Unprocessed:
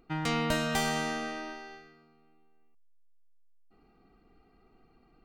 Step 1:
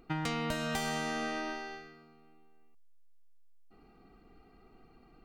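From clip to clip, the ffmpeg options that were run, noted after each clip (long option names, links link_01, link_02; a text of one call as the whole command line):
ffmpeg -i in.wav -af "acompressor=threshold=-34dB:ratio=10,volume=3.5dB" out.wav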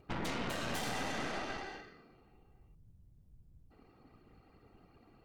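ffmpeg -i in.wav -af "afftfilt=real='hypot(re,im)*cos(2*PI*random(0))':imag='hypot(re,im)*sin(2*PI*random(1))':win_size=512:overlap=0.75,aeval=exprs='0.0501*(cos(1*acos(clip(val(0)/0.0501,-1,1)))-cos(1*PI/2))+0.0224*(cos(5*acos(clip(val(0)/0.0501,-1,1)))-cos(5*PI/2))+0.0178*(cos(8*acos(clip(val(0)/0.0501,-1,1)))-cos(8*PI/2))':channel_layout=same,volume=-6.5dB" out.wav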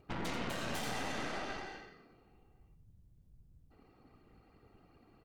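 ffmpeg -i in.wav -af "aecho=1:1:88:0.316,volume=-1.5dB" out.wav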